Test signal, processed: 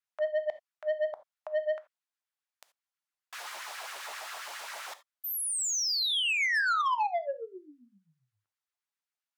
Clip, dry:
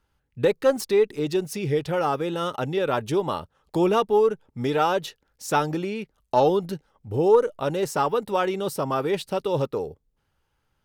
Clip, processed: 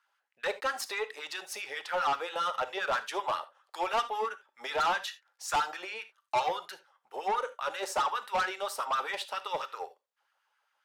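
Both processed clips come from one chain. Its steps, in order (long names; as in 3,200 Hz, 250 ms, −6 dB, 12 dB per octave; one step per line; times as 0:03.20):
meter weighting curve A
auto-filter high-pass sine 7.5 Hz 640–1,600 Hz
soft clipping −21 dBFS
reverb whose tail is shaped and stops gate 100 ms flat, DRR 12 dB
level −3 dB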